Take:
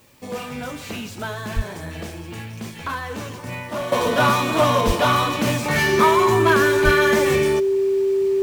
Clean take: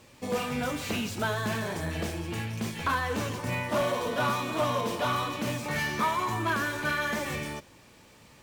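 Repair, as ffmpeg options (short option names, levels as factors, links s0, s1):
-filter_complex "[0:a]bandreject=f=390:w=30,asplit=3[s0][s1][s2];[s0]afade=t=out:st=1.55:d=0.02[s3];[s1]highpass=f=140:w=0.5412,highpass=f=140:w=1.3066,afade=t=in:st=1.55:d=0.02,afade=t=out:st=1.67:d=0.02[s4];[s2]afade=t=in:st=1.67:d=0.02[s5];[s3][s4][s5]amix=inputs=3:normalize=0,asplit=3[s6][s7][s8];[s6]afade=t=out:st=4.86:d=0.02[s9];[s7]highpass=f=140:w=0.5412,highpass=f=140:w=1.3066,afade=t=in:st=4.86:d=0.02,afade=t=out:st=4.98:d=0.02[s10];[s8]afade=t=in:st=4.98:d=0.02[s11];[s9][s10][s11]amix=inputs=3:normalize=0,asplit=3[s12][s13][s14];[s12]afade=t=out:st=6.84:d=0.02[s15];[s13]highpass=f=140:w=0.5412,highpass=f=140:w=1.3066,afade=t=in:st=6.84:d=0.02,afade=t=out:st=6.96:d=0.02[s16];[s14]afade=t=in:st=6.96:d=0.02[s17];[s15][s16][s17]amix=inputs=3:normalize=0,agate=range=0.0891:threshold=0.0447,asetnsamples=n=441:p=0,asendcmd='3.92 volume volume -10.5dB',volume=1"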